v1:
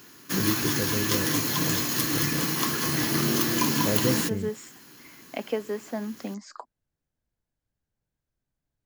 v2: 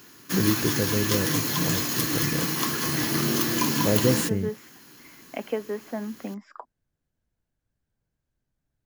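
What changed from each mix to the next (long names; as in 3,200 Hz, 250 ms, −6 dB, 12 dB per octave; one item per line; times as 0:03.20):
first voice +4.5 dB
second voice: add Savitzky-Golay smoothing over 25 samples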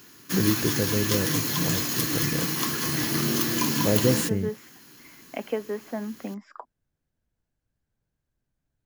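background: add parametric band 750 Hz −2.5 dB 2.4 octaves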